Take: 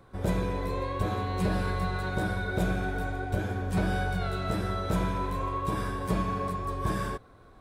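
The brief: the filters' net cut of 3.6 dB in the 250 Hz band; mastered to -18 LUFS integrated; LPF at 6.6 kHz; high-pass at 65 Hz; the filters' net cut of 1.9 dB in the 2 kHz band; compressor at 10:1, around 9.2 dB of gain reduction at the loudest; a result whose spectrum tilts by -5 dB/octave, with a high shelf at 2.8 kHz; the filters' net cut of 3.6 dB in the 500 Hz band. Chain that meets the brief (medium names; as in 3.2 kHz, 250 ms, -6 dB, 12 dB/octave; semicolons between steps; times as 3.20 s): high-pass 65 Hz; low-pass 6.6 kHz; peaking EQ 250 Hz -5 dB; peaking EQ 500 Hz -3 dB; peaking EQ 2 kHz -4.5 dB; treble shelf 2.8 kHz +5 dB; compression 10:1, threshold -35 dBFS; trim +21.5 dB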